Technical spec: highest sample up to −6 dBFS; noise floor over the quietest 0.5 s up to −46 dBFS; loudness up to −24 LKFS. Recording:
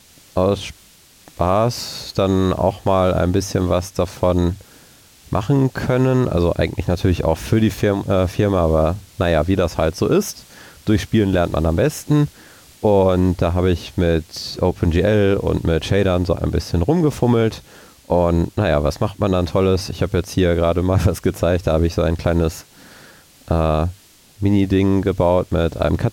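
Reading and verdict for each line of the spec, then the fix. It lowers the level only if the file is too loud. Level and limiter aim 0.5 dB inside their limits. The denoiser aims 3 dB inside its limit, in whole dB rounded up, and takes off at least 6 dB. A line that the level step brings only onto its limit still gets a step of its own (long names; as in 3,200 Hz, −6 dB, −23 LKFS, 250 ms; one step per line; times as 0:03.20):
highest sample −5.0 dBFS: out of spec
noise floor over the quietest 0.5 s −49 dBFS: in spec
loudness −18.5 LKFS: out of spec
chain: level −6 dB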